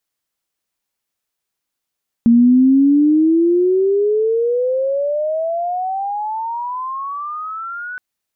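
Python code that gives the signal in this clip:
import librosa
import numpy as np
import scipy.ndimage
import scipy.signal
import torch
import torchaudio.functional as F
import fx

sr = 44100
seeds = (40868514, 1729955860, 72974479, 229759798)

y = fx.chirp(sr, length_s=5.72, from_hz=230.0, to_hz=1500.0, law='logarithmic', from_db=-6.5, to_db=-25.0)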